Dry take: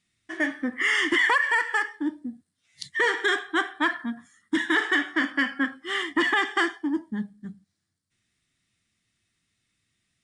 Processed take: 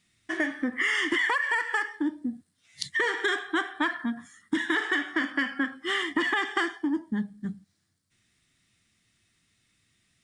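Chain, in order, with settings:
downward compressor 3 to 1, threshold −32 dBFS, peak gain reduction 11 dB
level +5.5 dB

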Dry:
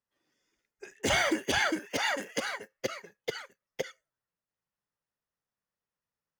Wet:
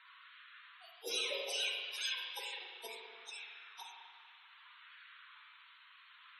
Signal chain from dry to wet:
phase-vocoder pitch shift without resampling +10 semitones
high-pass filter 270 Hz 12 dB per octave
flat-topped bell 940 Hz −12.5 dB
noise in a band 970–4,000 Hz −58 dBFS
spectral peaks only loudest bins 64
auto-filter high-pass sine 0.65 Hz 440–1,600 Hz
spring reverb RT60 1.7 s, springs 38/47 ms, chirp 35 ms, DRR −0.5 dB
level that may rise only so fast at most 310 dB per second
level −4.5 dB

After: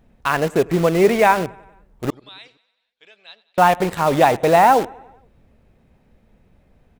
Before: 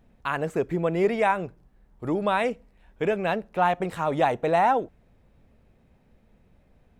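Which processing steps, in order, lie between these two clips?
0:02.10–0:03.58: resonant band-pass 4,000 Hz, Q 6.2
repeating echo 94 ms, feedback 59%, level −20 dB
in parallel at −4 dB: bit reduction 5 bits
on the sum: level +4 dB

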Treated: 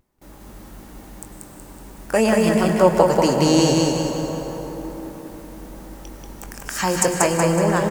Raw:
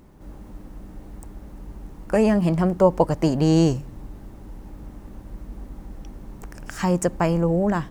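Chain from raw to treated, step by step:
noise gate with hold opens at −38 dBFS
spectral tilt +2.5 dB per octave
mains-hum notches 60/120/180 Hz
pitch vibrato 0.52 Hz 26 cents
double-tracking delay 22 ms −11.5 dB
on a send: repeating echo 186 ms, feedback 47%, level −3 dB
on the sum: dense smooth reverb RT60 5 s, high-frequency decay 0.45×, pre-delay 90 ms, DRR 6 dB
level +3.5 dB

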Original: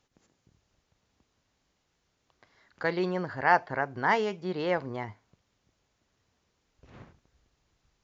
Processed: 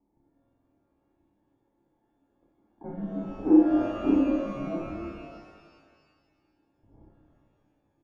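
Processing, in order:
frequency inversion band by band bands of 500 Hz
high-pass filter 100 Hz 12 dB per octave
mains-hum notches 50/100/150 Hz
frequency shifter −350 Hz
bit-depth reduction 10 bits, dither triangular
formant resonators in series u
on a send: ambience of single reflections 29 ms −3.5 dB, 55 ms −6.5 dB
on the sum: buffer that repeats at 0:00.30, samples 2,048, times 8
reverb with rising layers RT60 1.7 s, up +12 semitones, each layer −8 dB, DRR 2 dB
level +5 dB

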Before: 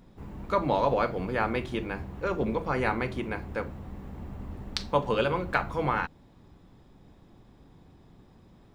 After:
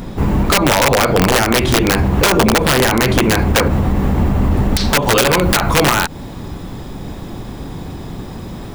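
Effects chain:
high-shelf EQ 7,100 Hz +3.5 dB, from 0:05.03 +9.5 dB
downward compressor 16 to 1, threshold −30 dBFS, peak gain reduction 12.5 dB
wrap-around overflow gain 27.5 dB
boost into a limiter +31.5 dB
level −4.5 dB

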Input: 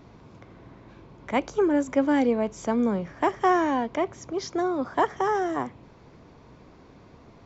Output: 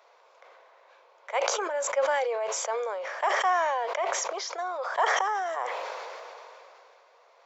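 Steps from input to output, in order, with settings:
elliptic high-pass filter 510 Hz, stop band 50 dB
level that may fall only so fast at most 20 dB per second
level −2 dB

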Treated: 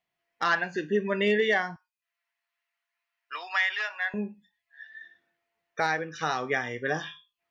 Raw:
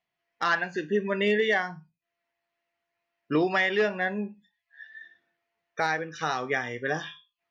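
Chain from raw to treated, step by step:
0:01.76–0:04.14: high-pass filter 950 Hz 24 dB per octave

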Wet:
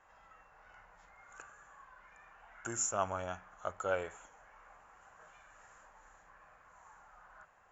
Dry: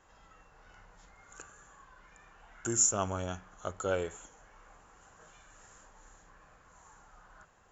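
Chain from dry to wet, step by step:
flat-topped bell 1,200 Hz +9.5 dB 2.5 octaves
level −9 dB

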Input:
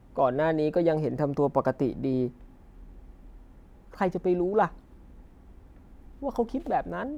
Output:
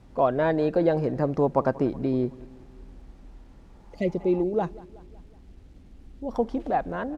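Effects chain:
0:03.66–0:04.38: healed spectral selection 710–1,900 Hz both
0:04.43–0:06.31: parametric band 1,300 Hz −14 dB 1.5 octaves
bit reduction 11 bits
high-frequency loss of the air 58 metres
on a send: repeating echo 186 ms, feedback 56%, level −21 dB
on the sum: level +2 dB

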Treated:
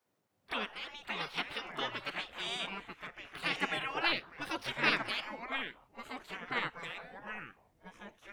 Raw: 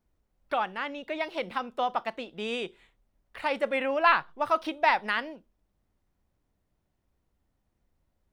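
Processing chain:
echo ahead of the sound 31 ms −18 dB
delay with pitch and tempo change per echo 426 ms, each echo −4 semitones, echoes 2, each echo −6 dB
gate on every frequency bin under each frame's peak −15 dB weak
level +3 dB

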